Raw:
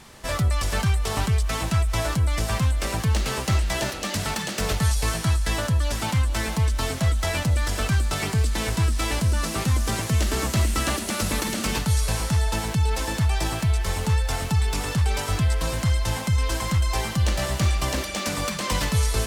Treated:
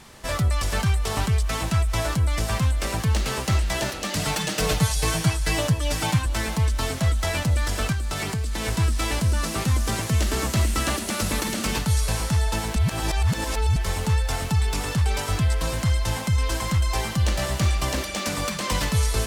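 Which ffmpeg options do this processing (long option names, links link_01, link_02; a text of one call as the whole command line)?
ffmpeg -i in.wav -filter_complex "[0:a]asettb=1/sr,asplit=3[link_01][link_02][link_03];[link_01]atrim=end=4.164[link_04];[link_02]atrim=start=4.16:end=6.26,asetpts=PTS-STARTPTS,afade=type=in:duration=0.004:curve=qsin,afade=type=out:start_time=2.096:duration=0.004:curve=qsin,aecho=1:1:6.5:0.92,atrim=end_sample=92610[link_05];[link_03]atrim=start=6.256[link_06];[link_04][link_05]acrossfade=duration=0.004:curve1=hsin:curve2=qsin[link_07];[link_07][link_06]acrossfade=duration=0.004:curve1=qsin:curve2=hsin,asettb=1/sr,asplit=3[link_08][link_09][link_10];[link_08]atrim=end=7.924[link_11];[link_09]atrim=start=7.92:end=8.65,asetpts=PTS-STARTPTS,afade=type=in:duration=0.004:curve=qsin,afade=type=out:start_time=0.726:duration=0.004:curve=qsin,acompressor=threshold=-23dB:ratio=5:attack=3.2:release=140:knee=1:detection=peak[link_12];[link_10]atrim=start=8.646[link_13];[link_11][link_12]acrossfade=duration=0.004:curve1=hsin:curve2=qsin[link_14];[link_14][link_13]acrossfade=duration=0.004:curve1=qsin:curve2=hsin,asplit=3[link_15][link_16][link_17];[link_15]atrim=end=12.762[link_18];[link_16]atrim=start=12.758:end=13.762,asetpts=PTS-STARTPTS,areverse[link_19];[link_17]atrim=start=13.758[link_20];[link_18][link_19]acrossfade=duration=0.004:curve1=hsin:curve2=hsin[link_21];[link_21][link_20]acrossfade=duration=0.004:curve1=hsin:curve2=hsin" out.wav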